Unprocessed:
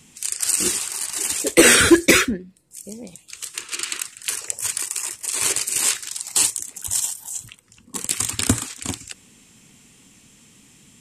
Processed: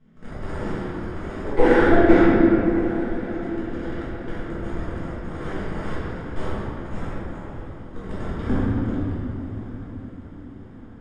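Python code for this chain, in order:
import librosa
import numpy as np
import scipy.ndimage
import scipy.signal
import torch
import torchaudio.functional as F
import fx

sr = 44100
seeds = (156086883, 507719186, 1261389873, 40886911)

y = fx.lower_of_two(x, sr, delay_ms=0.6)
y = scipy.signal.sosfilt(scipy.signal.butter(2, 1100.0, 'lowpass', fs=sr, output='sos'), y)
y = fx.echo_diffused(y, sr, ms=1214, feedback_pct=57, wet_db=-15.5)
y = fx.room_shoebox(y, sr, seeds[0], volume_m3=140.0, walls='hard', distance_m=1.5)
y = y * 10.0 ** (-8.5 / 20.0)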